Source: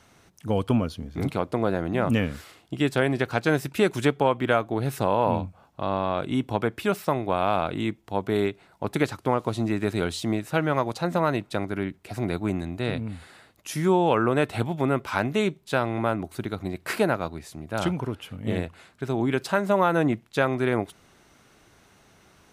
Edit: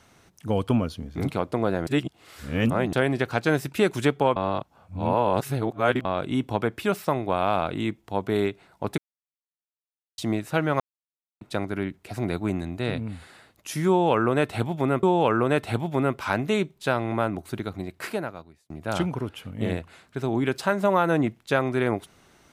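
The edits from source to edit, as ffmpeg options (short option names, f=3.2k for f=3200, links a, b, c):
-filter_complex "[0:a]asplit=11[a][b][c][d][e][f][g][h][i][j][k];[a]atrim=end=1.872[l];[b]atrim=start=1.868:end=2.932,asetpts=PTS-STARTPTS,areverse[m];[c]atrim=start=2.928:end=4.362[n];[d]atrim=start=4.358:end=6.052,asetpts=PTS-STARTPTS,areverse[o];[e]atrim=start=6.048:end=8.98,asetpts=PTS-STARTPTS,afade=t=out:st=2.928:d=0.004:c=hsin[p];[f]atrim=start=8.98:end=10.18,asetpts=PTS-STARTPTS,volume=0[q];[g]atrim=start=10.18:end=10.8,asetpts=PTS-STARTPTS,afade=t=in:d=0.004:c=hsin,afade=t=out:st=0.616:d=0.004:c=hsin[r];[h]atrim=start=10.8:end=11.41,asetpts=PTS-STARTPTS,volume=0[s];[i]atrim=start=11.41:end=15.032,asetpts=PTS-STARTPTS,afade=t=in:d=0.004:c=hsin[t];[j]atrim=start=13.888:end=17.56,asetpts=PTS-STARTPTS,afade=t=out:st=2.542:d=1.13[u];[k]atrim=start=17.56,asetpts=PTS-STARTPTS,afade=t=in:d=0.004:c=hsin[v];[l][m]acrossfade=d=0.004:c1=hsin:c2=hsin[w];[w][n]acrossfade=d=0.004:c1=hsin:c2=hsin[x];[x][o]acrossfade=d=0.004:c1=hsin:c2=hsin[y];[p][q][r][s][t]concat=n=5:v=0:a=1[z];[y][z]acrossfade=d=0.004:c1=hsin:c2=hsin[aa];[u][v]concat=n=2:v=0:a=1[ab];[aa][ab]acrossfade=d=0.004:c1=hsin:c2=hsin"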